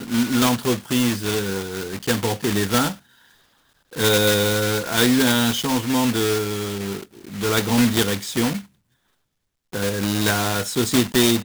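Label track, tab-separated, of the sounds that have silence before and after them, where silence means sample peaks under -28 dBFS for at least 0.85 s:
3.930000	8.600000	sound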